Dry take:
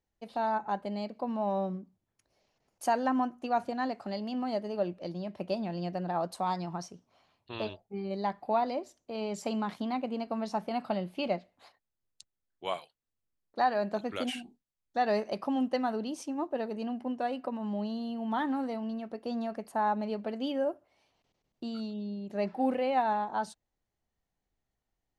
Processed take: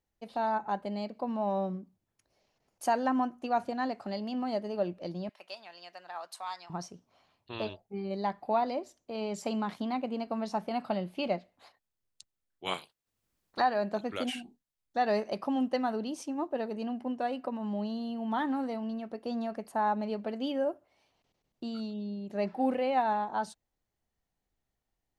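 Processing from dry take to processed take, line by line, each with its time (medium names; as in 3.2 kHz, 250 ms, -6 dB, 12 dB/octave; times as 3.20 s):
5.29–6.70 s: high-pass 1.3 kHz
12.65–13.60 s: spectral peaks clipped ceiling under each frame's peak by 18 dB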